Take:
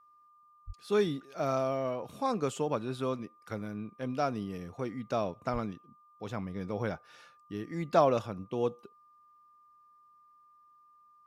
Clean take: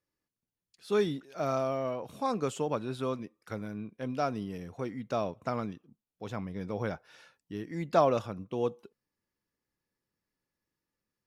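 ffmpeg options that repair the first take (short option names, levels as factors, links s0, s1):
-filter_complex "[0:a]bandreject=f=1200:w=30,asplit=3[s0][s1][s2];[s0]afade=t=out:st=0.66:d=0.02[s3];[s1]highpass=f=140:w=0.5412,highpass=f=140:w=1.3066,afade=t=in:st=0.66:d=0.02,afade=t=out:st=0.78:d=0.02[s4];[s2]afade=t=in:st=0.78:d=0.02[s5];[s3][s4][s5]amix=inputs=3:normalize=0,asplit=3[s6][s7][s8];[s6]afade=t=out:st=5.52:d=0.02[s9];[s7]highpass=f=140:w=0.5412,highpass=f=140:w=1.3066,afade=t=in:st=5.52:d=0.02,afade=t=out:st=5.64:d=0.02[s10];[s8]afade=t=in:st=5.64:d=0.02[s11];[s9][s10][s11]amix=inputs=3:normalize=0"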